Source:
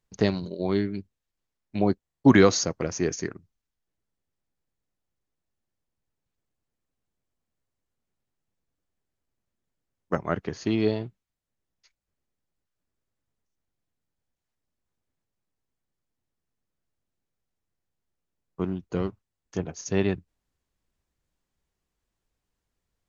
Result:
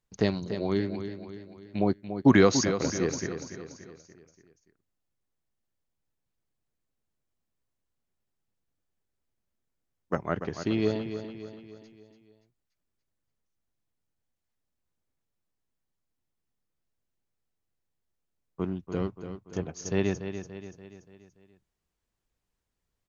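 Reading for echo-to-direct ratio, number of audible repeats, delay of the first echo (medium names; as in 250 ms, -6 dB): -8.5 dB, 5, 288 ms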